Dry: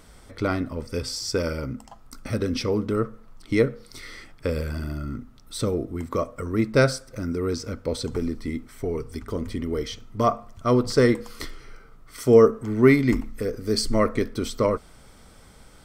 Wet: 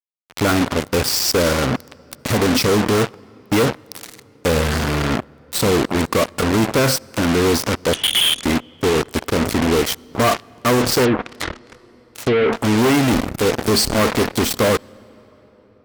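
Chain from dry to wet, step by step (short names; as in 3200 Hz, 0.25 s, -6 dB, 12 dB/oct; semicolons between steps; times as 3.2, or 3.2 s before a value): fuzz box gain 36 dB, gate -35 dBFS; 7.93–8.44 inverted band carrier 3400 Hz; on a send at -24 dB: reverb RT60 4.7 s, pre-delay 63 ms; 11.04–12.53 on the sum: treble ducked by the level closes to 730 Hz, closed at -13 dBFS; added harmonics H 3 -21 dB, 7 -13 dB, 8 -24 dB, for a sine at -7.5 dBFS; HPF 99 Hz 6 dB/oct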